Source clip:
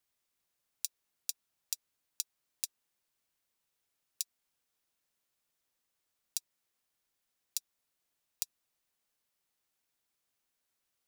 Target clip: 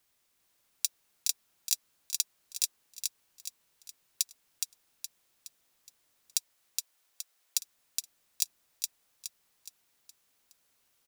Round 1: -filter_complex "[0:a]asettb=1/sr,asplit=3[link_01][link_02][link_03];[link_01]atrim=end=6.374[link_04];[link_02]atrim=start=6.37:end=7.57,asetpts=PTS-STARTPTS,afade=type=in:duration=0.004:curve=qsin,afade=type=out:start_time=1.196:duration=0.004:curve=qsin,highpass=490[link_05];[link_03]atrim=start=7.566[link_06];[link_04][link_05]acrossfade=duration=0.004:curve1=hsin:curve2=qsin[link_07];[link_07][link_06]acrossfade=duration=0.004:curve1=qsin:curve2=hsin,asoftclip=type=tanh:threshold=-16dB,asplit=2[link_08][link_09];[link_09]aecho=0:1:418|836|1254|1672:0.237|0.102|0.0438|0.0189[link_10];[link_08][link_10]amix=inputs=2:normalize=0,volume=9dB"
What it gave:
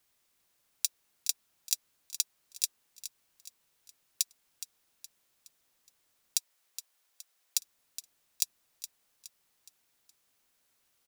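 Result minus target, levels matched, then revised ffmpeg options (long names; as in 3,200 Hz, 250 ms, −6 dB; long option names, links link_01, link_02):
echo-to-direct −8.5 dB
-filter_complex "[0:a]asettb=1/sr,asplit=3[link_01][link_02][link_03];[link_01]atrim=end=6.374[link_04];[link_02]atrim=start=6.37:end=7.57,asetpts=PTS-STARTPTS,afade=type=in:duration=0.004:curve=qsin,afade=type=out:start_time=1.196:duration=0.004:curve=qsin,highpass=490[link_05];[link_03]atrim=start=7.566[link_06];[link_04][link_05]acrossfade=duration=0.004:curve1=hsin:curve2=qsin[link_07];[link_07][link_06]acrossfade=duration=0.004:curve1=qsin:curve2=hsin,asoftclip=type=tanh:threshold=-16dB,asplit=2[link_08][link_09];[link_09]aecho=0:1:418|836|1254|1672|2090:0.631|0.271|0.117|0.0502|0.0216[link_10];[link_08][link_10]amix=inputs=2:normalize=0,volume=9dB"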